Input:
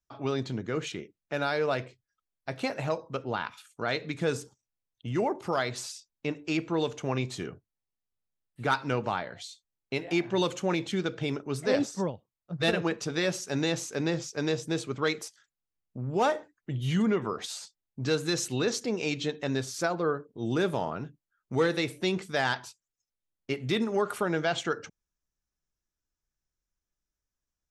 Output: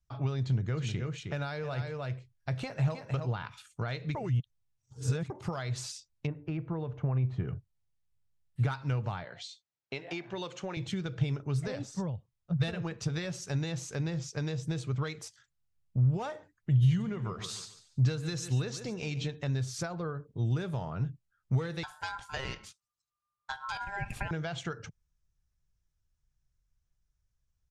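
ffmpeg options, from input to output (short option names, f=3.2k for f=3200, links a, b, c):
-filter_complex "[0:a]asplit=3[a][b][c];[a]afade=t=out:st=0.76:d=0.02[d];[b]aecho=1:1:312:0.422,afade=t=in:st=0.76:d=0.02,afade=t=out:st=3.44:d=0.02[e];[c]afade=t=in:st=3.44:d=0.02[f];[d][e][f]amix=inputs=3:normalize=0,asplit=3[g][h][i];[g]afade=t=out:st=6.26:d=0.02[j];[h]lowpass=1.4k,afade=t=in:st=6.26:d=0.02,afade=t=out:st=7.47:d=0.02[k];[i]afade=t=in:st=7.47:d=0.02[l];[j][k][l]amix=inputs=3:normalize=0,asettb=1/sr,asplit=3[m][n][o];[m]atrim=end=9.244[p];[n]atrim=start=9.24:end=10.77,asetpts=PTS-STARTPTS,afade=t=in:d=0.004:c=qsin,afade=t=out:st=1.526:d=0.004:c=qsin,highpass=300,lowpass=6k[q];[o]atrim=start=10.766[r];[p][q]acrossfade=d=0.004:c1=hsin:c2=qsin[s];[s][r]acrossfade=d=0.004:c1=qsin:c2=hsin,asplit=3[t][u][v];[t]afade=t=out:st=16.71:d=0.02[w];[u]aecho=1:1:143|286|429:0.211|0.0613|0.0178,afade=t=in:st=16.71:d=0.02,afade=t=out:st=19.33:d=0.02[x];[v]afade=t=in:st=19.33:d=0.02[y];[w][x][y]amix=inputs=3:normalize=0,asettb=1/sr,asplit=3[z][aa][ab];[z]atrim=end=21.834[ac];[aa]atrim=start=21.83:end=24.31,asetpts=PTS-STARTPTS,afade=t=in:d=0.004:c=qsin,afade=t=out:st=2.476:d=0.004:c=qsin,aeval=exprs='val(0)*sin(2*PI*1200*n/s)':c=same[ad];[ab]atrim=start=24.306[ae];[ac][ad]acrossfade=d=0.004:c1=hsin:c2=qsin[af];[af][ae]acrossfade=d=0.004:c1=qsin:c2=hsin,asplit=3[ag][ah][ai];[ag]atrim=end=4.152[aj];[ah]atrim=start=4.148:end=5.302,asetpts=PTS-STARTPTS,areverse[ak];[ai]atrim=start=5.298[al];[aj][ak]acrossfade=d=0.004:c1=hsin:c2=hsin[am];[am][al]acrossfade=d=0.004:c1=hsin:c2=hsin,acompressor=threshold=-34dB:ratio=6,lowpass=10k,lowshelf=f=180:t=q:w=1.5:g=12.5"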